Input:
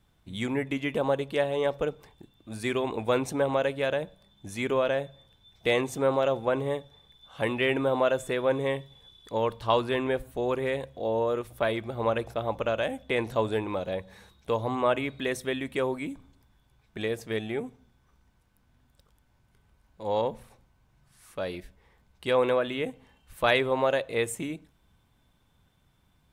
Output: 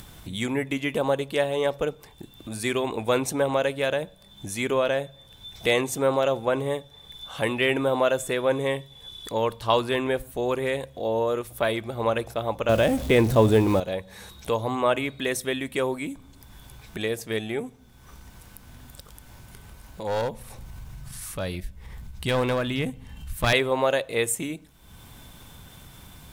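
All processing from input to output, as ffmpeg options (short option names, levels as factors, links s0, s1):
-filter_complex "[0:a]asettb=1/sr,asplit=3[s0][s1][s2];[s0]atrim=end=12.694[s3];[s1]atrim=start=12.69:end=13.8,asetpts=PTS-STARTPTS,afade=t=in:d=0.004:c=qsin,afade=t=out:st=1.106:d=0.004:c=qsin,aeval=exprs='val(0)+0.5*0.0119*sgn(val(0))':c=same,lowshelf=f=470:g=11.5[s4];[s2]atrim=start=13.796[s5];[s3][s4]acrossfade=d=0.004:c1=hsin:c2=qsin[s6];[s6][s5]acrossfade=d=0.004:c1=qsin:c2=hsin,asettb=1/sr,asplit=3[s7][s8][s9];[s7]atrim=end=20.074[s10];[s8]atrim=start=20.07:end=23.53,asetpts=PTS-STARTPTS,afade=t=in:d=0.004:c=qsin,afade=t=out:st=3.456:d=0.004:c=qsin,asubboost=boost=8:cutoff=180,acompressor=mode=upward:threshold=0.01:ratio=2.5:attack=3.2:release=140:knee=2.83:detection=peak,aeval=exprs='clip(val(0),-1,0.0473)':c=same[s11];[s9]atrim=start=23.526[s12];[s10][s11]acrossfade=d=0.004:c1=hsin:c2=qsin[s13];[s13][s12]acrossfade=d=0.004:c1=qsin:c2=hsin,aemphasis=mode=production:type=cd,acompressor=mode=upward:threshold=0.0224:ratio=2.5,volume=1.33"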